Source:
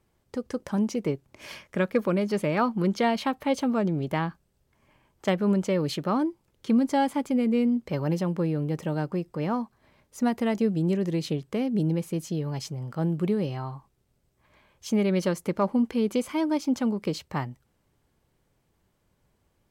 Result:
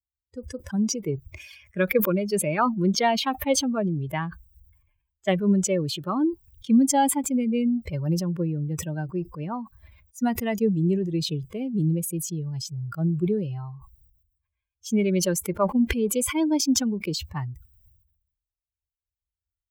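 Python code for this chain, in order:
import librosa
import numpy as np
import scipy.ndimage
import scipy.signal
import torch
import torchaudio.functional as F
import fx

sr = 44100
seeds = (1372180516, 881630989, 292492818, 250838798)

y = fx.bin_expand(x, sr, power=2.0)
y = scipy.signal.sosfilt(scipy.signal.butter(2, 54.0, 'highpass', fs=sr, output='sos'), y)
y = fx.sustainer(y, sr, db_per_s=60.0)
y = y * 10.0 ** (5.5 / 20.0)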